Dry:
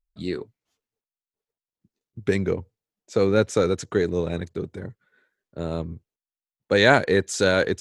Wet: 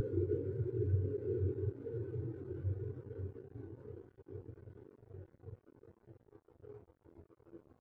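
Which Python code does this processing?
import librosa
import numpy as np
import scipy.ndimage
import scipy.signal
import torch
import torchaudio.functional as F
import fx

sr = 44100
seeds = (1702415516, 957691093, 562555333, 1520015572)

p1 = fx.sample_hold(x, sr, seeds[0], rate_hz=3900.0, jitter_pct=0)
p2 = x + F.gain(torch.from_numpy(p1), -6.0).numpy()
p3 = fx.paulstretch(p2, sr, seeds[1], factor=49.0, window_s=1.0, from_s=5.08)
p4 = fx.fixed_phaser(p3, sr, hz=640.0, stages=6)
p5 = fx.quant_dither(p4, sr, seeds[2], bits=8, dither='none')
p6 = fx.spectral_expand(p5, sr, expansion=2.5)
y = F.gain(torch.from_numpy(p6), 10.5).numpy()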